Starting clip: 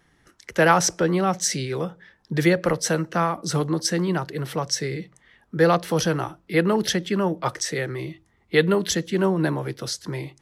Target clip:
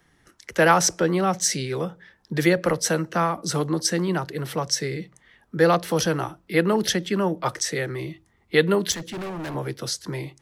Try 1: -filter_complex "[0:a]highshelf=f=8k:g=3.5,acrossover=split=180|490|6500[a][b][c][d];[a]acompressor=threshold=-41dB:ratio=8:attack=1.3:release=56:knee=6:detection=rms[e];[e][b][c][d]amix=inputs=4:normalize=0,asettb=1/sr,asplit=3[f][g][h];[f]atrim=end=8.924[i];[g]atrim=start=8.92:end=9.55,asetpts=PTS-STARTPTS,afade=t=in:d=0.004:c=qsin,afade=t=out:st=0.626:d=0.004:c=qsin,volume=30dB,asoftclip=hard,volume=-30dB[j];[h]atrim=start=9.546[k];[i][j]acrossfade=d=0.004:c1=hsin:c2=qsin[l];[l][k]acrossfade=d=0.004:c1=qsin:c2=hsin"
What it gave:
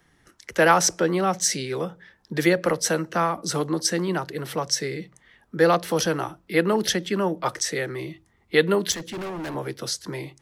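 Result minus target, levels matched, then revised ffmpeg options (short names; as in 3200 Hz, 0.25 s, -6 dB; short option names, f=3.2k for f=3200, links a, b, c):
compressor: peak gain reduction +10 dB
-filter_complex "[0:a]highshelf=f=8k:g=3.5,acrossover=split=180|490|6500[a][b][c][d];[a]acompressor=threshold=-29.5dB:ratio=8:attack=1.3:release=56:knee=6:detection=rms[e];[e][b][c][d]amix=inputs=4:normalize=0,asettb=1/sr,asplit=3[f][g][h];[f]atrim=end=8.924[i];[g]atrim=start=8.92:end=9.55,asetpts=PTS-STARTPTS,afade=t=in:d=0.004:c=qsin,afade=t=out:st=0.626:d=0.004:c=qsin,volume=30dB,asoftclip=hard,volume=-30dB[j];[h]atrim=start=9.546[k];[i][j]acrossfade=d=0.004:c1=hsin:c2=qsin[l];[l][k]acrossfade=d=0.004:c1=qsin:c2=hsin"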